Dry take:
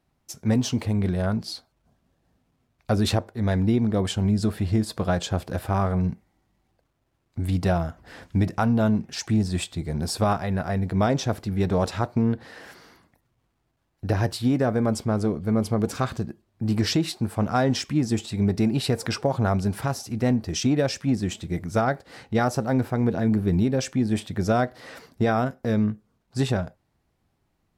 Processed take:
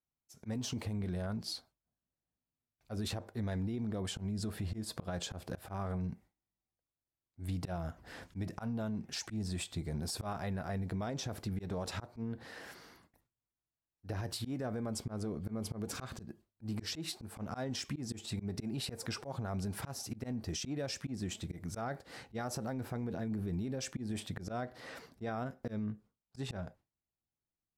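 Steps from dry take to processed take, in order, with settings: gate with hold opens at -47 dBFS; high shelf 6300 Hz +3.5 dB, from 24.34 s -2 dB; auto swell 0.19 s; limiter -21 dBFS, peak gain reduction 10 dB; compressor 2:1, threshold -31 dBFS, peak gain reduction 4.5 dB; gain -5.5 dB

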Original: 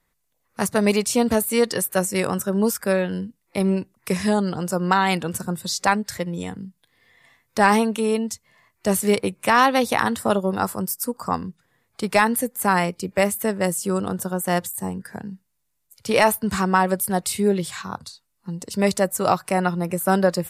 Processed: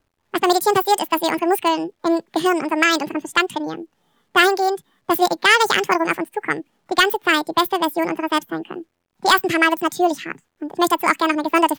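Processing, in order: low-pass opened by the level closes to 700 Hz, open at -15 dBFS; bit-crush 12-bit; wide varispeed 1.74×; gain +3 dB

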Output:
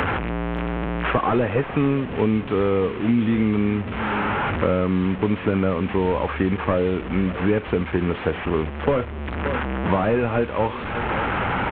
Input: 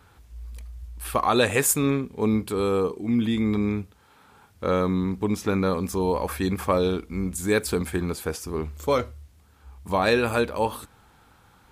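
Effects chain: delta modulation 16 kbps, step -31.5 dBFS; echo 0.572 s -20.5 dB; three-band squash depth 100%; gain +3 dB

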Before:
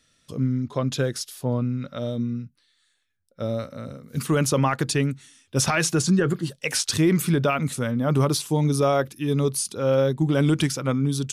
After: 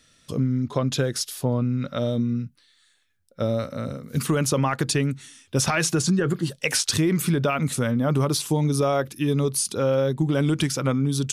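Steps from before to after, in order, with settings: compressor 3:1, threshold -26 dBFS, peak gain reduction 8.5 dB; gain +5.5 dB

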